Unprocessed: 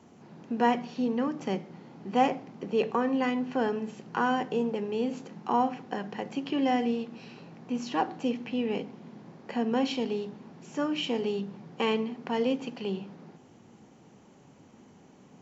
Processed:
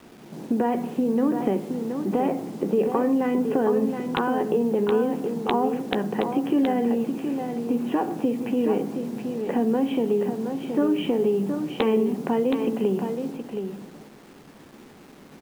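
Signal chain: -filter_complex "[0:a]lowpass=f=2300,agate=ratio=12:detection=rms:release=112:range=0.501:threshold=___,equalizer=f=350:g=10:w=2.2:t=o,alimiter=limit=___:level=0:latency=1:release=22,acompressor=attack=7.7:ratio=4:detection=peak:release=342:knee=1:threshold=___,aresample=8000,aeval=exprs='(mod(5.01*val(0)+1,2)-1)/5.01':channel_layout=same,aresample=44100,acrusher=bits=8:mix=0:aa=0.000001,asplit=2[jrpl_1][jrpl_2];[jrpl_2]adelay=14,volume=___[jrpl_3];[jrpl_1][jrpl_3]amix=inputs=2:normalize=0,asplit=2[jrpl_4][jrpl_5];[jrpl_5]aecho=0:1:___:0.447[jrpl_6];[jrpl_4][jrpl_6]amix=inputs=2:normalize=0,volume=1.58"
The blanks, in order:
0.00398, 0.237, 0.0708, 0.211, 721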